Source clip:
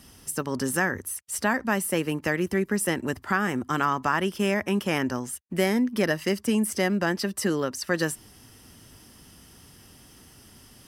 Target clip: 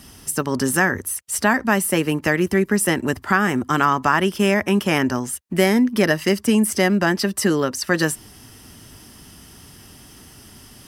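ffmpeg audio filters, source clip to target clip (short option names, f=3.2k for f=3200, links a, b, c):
-af "bandreject=f=510:w=12,volume=7dB"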